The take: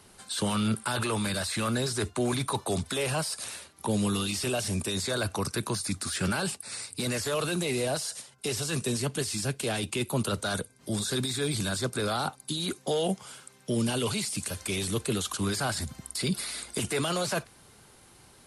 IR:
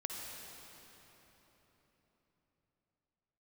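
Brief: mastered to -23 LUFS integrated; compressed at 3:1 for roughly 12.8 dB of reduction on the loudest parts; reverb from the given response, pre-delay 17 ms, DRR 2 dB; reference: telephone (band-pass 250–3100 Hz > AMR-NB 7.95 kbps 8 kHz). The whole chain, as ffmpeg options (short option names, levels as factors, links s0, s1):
-filter_complex "[0:a]acompressor=threshold=0.00794:ratio=3,asplit=2[s0][s1];[1:a]atrim=start_sample=2205,adelay=17[s2];[s1][s2]afir=irnorm=-1:irlink=0,volume=0.75[s3];[s0][s3]amix=inputs=2:normalize=0,highpass=250,lowpass=3100,volume=11.9" -ar 8000 -c:a libopencore_amrnb -b:a 7950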